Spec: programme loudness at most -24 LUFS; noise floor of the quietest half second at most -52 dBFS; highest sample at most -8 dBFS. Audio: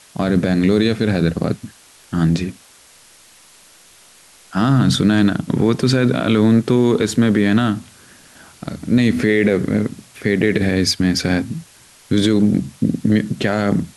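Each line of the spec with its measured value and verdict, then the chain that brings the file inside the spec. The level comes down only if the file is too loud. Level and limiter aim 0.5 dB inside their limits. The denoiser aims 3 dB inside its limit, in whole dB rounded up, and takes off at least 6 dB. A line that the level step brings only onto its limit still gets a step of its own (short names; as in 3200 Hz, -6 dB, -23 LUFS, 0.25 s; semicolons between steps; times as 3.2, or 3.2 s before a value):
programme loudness -17.0 LUFS: fail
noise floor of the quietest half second -48 dBFS: fail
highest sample -5.5 dBFS: fail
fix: gain -7.5 dB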